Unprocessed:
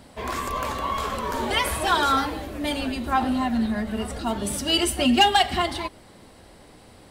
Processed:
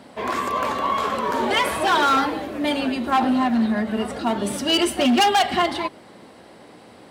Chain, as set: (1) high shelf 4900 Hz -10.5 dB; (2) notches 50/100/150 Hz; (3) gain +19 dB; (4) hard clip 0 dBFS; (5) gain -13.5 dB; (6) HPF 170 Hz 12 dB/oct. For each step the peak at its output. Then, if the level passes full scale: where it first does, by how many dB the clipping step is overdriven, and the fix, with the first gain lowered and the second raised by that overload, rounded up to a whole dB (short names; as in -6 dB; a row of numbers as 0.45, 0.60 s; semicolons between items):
-9.0, -9.0, +10.0, 0.0, -13.5, -9.0 dBFS; step 3, 10.0 dB; step 3 +9 dB, step 5 -3.5 dB